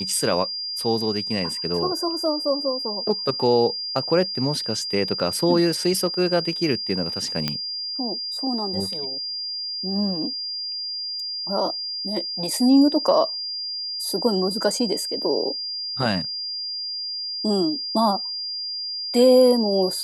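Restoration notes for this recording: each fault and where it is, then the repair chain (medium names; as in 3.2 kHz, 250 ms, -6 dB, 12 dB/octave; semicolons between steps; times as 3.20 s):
whine 4.8 kHz -27 dBFS
7.48 s: pop -8 dBFS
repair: de-click; band-stop 4.8 kHz, Q 30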